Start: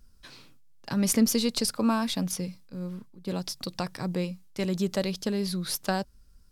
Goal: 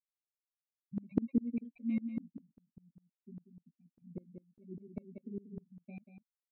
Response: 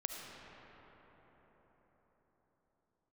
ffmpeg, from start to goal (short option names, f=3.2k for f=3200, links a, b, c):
-filter_complex "[0:a]afftfilt=real='re*gte(hypot(re,im),0.224)':imag='im*gte(hypot(re,im),0.224)':win_size=1024:overlap=0.75,adynamicequalizer=threshold=0.00501:dfrequency=150:dqfactor=3.6:tfrequency=150:tqfactor=3.6:attack=5:release=100:ratio=0.375:range=2:mode=cutabove:tftype=bell,acrossover=split=570|960[a][b][c];[c]acrusher=samples=27:mix=1:aa=0.000001[d];[a][b][d]amix=inputs=3:normalize=0,aresample=8000,aresample=44100,asplit=3[e][f][g];[e]bandpass=f=270:t=q:w=8,volume=0dB[h];[f]bandpass=f=2.29k:t=q:w=8,volume=-6dB[i];[g]bandpass=f=3.01k:t=q:w=8,volume=-9dB[j];[h][i][j]amix=inputs=3:normalize=0,asplit=2[k][l];[l]adelay=13,volume=-8dB[m];[k][m]amix=inputs=2:normalize=0,asplit=2[n][o];[o]aecho=0:1:187:0.398[p];[n][p]amix=inputs=2:normalize=0,aeval=exprs='val(0)*pow(10,-28*if(lt(mod(-5*n/s,1),2*abs(-5)/1000),1-mod(-5*n/s,1)/(2*abs(-5)/1000),(mod(-5*n/s,1)-2*abs(-5)/1000)/(1-2*abs(-5)/1000))/20)':c=same,volume=9dB"